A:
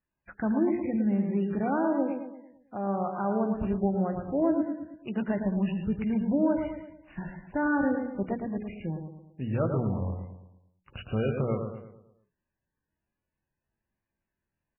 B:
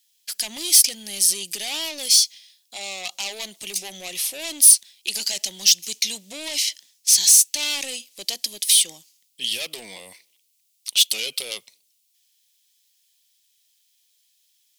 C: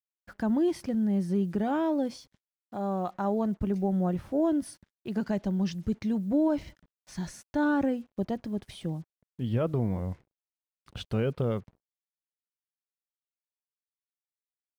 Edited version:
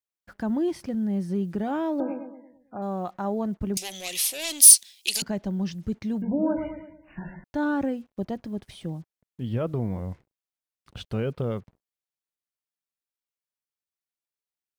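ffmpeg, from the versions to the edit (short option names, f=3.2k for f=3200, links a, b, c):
-filter_complex "[0:a]asplit=2[a][b];[2:a]asplit=4[c][d][e][f];[c]atrim=end=2.002[g];[a]atrim=start=1.998:end=2.822[h];[d]atrim=start=2.818:end=3.772[i];[1:a]atrim=start=3.768:end=5.222[j];[e]atrim=start=5.218:end=6.222[k];[b]atrim=start=6.218:end=7.442[l];[f]atrim=start=7.438[m];[g][h]acrossfade=d=0.004:c1=hsin:c2=hsin[n];[n][i]acrossfade=d=0.004:c1=hsin:c2=hsin[o];[o][j]acrossfade=d=0.004:c1=hsin:c2=hsin[p];[p][k]acrossfade=d=0.004:c1=hsin:c2=hsin[q];[q][l]acrossfade=d=0.004:c1=hsin:c2=hsin[r];[r][m]acrossfade=d=0.004:c1=hsin:c2=hsin"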